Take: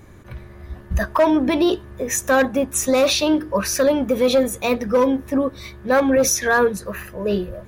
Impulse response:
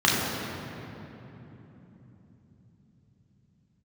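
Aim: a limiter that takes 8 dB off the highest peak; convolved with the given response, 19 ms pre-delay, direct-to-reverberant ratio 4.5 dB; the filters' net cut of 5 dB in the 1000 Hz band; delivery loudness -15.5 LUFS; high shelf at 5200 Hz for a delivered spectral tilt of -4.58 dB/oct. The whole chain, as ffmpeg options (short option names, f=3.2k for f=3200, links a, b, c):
-filter_complex "[0:a]equalizer=f=1k:t=o:g=-6,highshelf=f=5.2k:g=-8,alimiter=limit=-17dB:level=0:latency=1,asplit=2[a][b];[1:a]atrim=start_sample=2205,adelay=19[c];[b][c]afir=irnorm=-1:irlink=0,volume=-23.5dB[d];[a][d]amix=inputs=2:normalize=0,volume=8dB"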